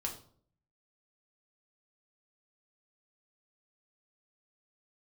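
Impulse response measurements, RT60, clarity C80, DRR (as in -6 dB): 0.55 s, 13.5 dB, 0.0 dB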